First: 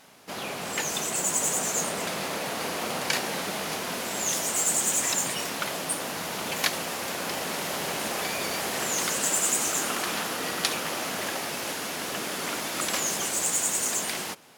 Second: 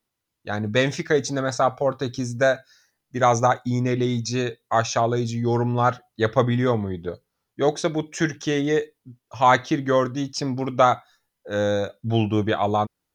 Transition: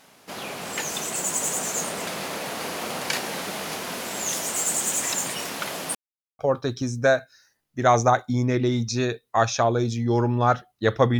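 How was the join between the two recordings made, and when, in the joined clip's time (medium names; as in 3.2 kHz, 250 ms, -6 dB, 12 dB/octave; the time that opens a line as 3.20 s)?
first
5.95–6.39 s: mute
6.39 s: go over to second from 1.76 s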